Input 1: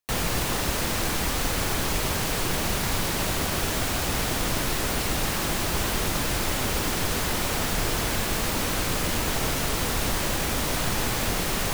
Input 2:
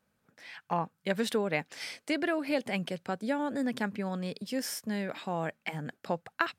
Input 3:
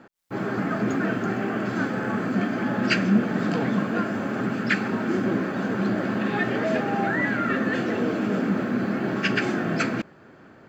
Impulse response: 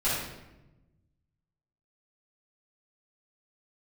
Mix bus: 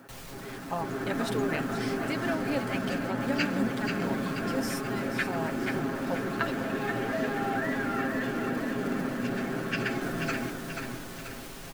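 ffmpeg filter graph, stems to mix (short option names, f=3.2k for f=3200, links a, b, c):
-filter_complex "[0:a]acompressor=mode=upward:threshold=-39dB:ratio=2.5,volume=-10.5dB[a];[1:a]volume=-3.5dB,asplit=2[b][c];[c]volume=-11dB[d];[2:a]volume=-3dB,asplit=2[e][f];[f]volume=-5.5dB[g];[a][e]amix=inputs=2:normalize=0,asoftclip=type=tanh:threshold=-27dB,alimiter=level_in=13dB:limit=-24dB:level=0:latency=1,volume=-13dB,volume=0dB[h];[d][g]amix=inputs=2:normalize=0,aecho=0:1:484|968|1452|1936|2420|2904|3388:1|0.5|0.25|0.125|0.0625|0.0312|0.0156[i];[b][h][i]amix=inputs=3:normalize=0,aecho=1:1:7.4:0.51"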